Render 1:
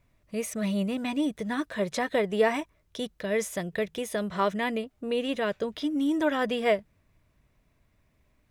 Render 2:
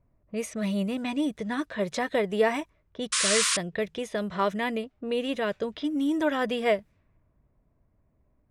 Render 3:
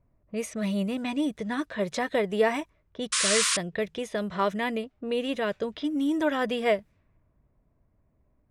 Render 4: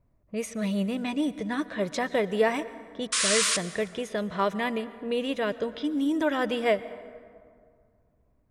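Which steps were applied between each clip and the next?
low-pass opened by the level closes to 900 Hz, open at -25.5 dBFS; painted sound noise, 3.12–3.57, 980–10000 Hz -25 dBFS
nothing audible
plate-style reverb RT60 2.1 s, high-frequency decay 0.5×, pre-delay 0.105 s, DRR 15.5 dB

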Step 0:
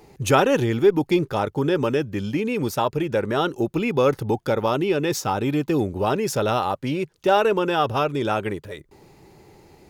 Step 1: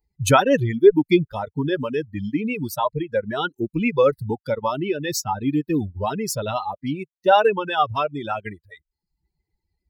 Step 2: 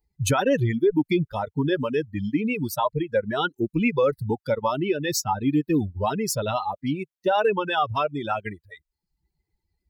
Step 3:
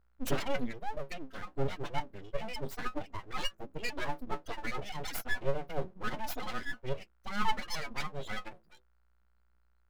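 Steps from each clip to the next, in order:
per-bin expansion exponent 2; reverb removal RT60 0.62 s; gain +6 dB
limiter -13 dBFS, peak gain reduction 11 dB
metallic resonator 130 Hz, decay 0.22 s, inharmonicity 0.03; buzz 60 Hz, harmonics 23, -68 dBFS -6 dB/oct; full-wave rectifier

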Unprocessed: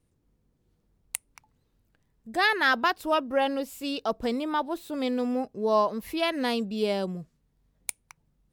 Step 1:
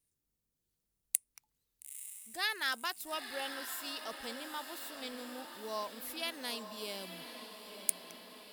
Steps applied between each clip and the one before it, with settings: pre-emphasis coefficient 0.9; diffused feedback echo 0.907 s, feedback 62%, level -8.5 dB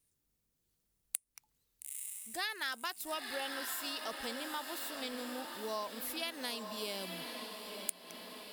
compressor 3:1, threshold -40 dBFS, peak gain reduction 12.5 dB; gain +4 dB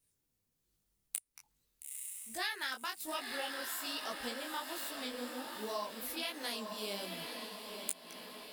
detuned doubles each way 43 cents; gain +3.5 dB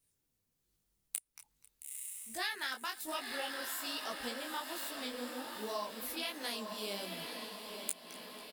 feedback echo 0.248 s, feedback 58%, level -20 dB

